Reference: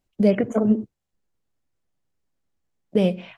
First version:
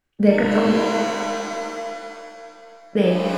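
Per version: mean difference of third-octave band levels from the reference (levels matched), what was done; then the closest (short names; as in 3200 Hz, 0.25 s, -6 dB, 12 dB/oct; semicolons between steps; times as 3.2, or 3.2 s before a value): 10.5 dB: bell 1600 Hz +12 dB 1 oct; on a send: flutter echo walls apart 6.7 m, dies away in 0.61 s; on the sum: shimmer reverb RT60 2.5 s, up +7 st, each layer -2 dB, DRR 2 dB; gain -2 dB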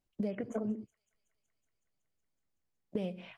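2.5 dB: compressor 10:1, threshold -24 dBFS, peak gain reduction 13 dB; thin delay 0.186 s, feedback 79%, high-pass 4000 Hz, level -18 dB; Doppler distortion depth 0.11 ms; gain -7.5 dB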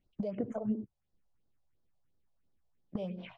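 4.0 dB: LPF 3700 Hz 12 dB/oct; compressor 16:1, threshold -28 dBFS, peak gain reduction 17 dB; phaser stages 4, 2.9 Hz, lowest notch 260–2500 Hz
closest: second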